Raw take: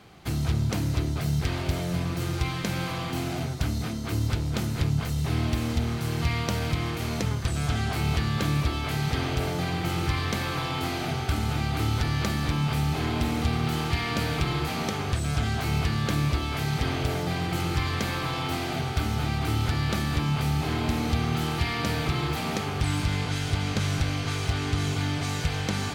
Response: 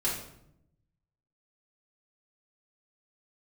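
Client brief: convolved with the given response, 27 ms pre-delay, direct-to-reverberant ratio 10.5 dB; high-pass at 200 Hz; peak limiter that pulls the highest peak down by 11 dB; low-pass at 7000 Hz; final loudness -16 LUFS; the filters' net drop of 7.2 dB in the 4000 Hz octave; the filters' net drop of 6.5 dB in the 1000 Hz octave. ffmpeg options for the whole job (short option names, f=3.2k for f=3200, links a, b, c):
-filter_complex "[0:a]highpass=200,lowpass=7k,equalizer=f=1k:t=o:g=-8.5,equalizer=f=4k:t=o:g=-8.5,alimiter=level_in=4dB:limit=-24dB:level=0:latency=1,volume=-4dB,asplit=2[a][b];[1:a]atrim=start_sample=2205,adelay=27[c];[b][c]afir=irnorm=-1:irlink=0,volume=-17.5dB[d];[a][d]amix=inputs=2:normalize=0,volume=20dB"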